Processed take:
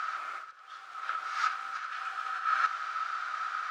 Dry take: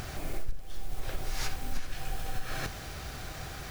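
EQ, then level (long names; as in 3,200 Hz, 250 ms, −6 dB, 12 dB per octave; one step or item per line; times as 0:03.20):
high-pass with resonance 1,300 Hz, resonance Q 15
high-frequency loss of the air 130 metres
0.0 dB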